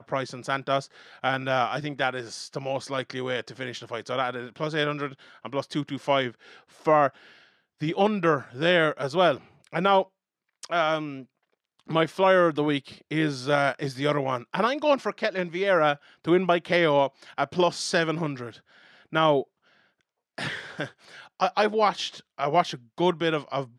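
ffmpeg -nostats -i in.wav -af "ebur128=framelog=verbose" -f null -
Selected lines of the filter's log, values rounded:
Integrated loudness:
  I:         -25.9 LUFS
  Threshold: -36.4 LUFS
Loudness range:
  LRA:         5.6 LU
  Threshold: -46.4 LUFS
  LRA low:   -29.9 LUFS
  LRA high:  -24.4 LUFS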